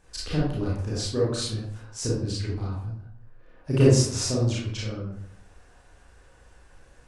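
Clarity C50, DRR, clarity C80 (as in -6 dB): 0.0 dB, -6.5 dB, 5.0 dB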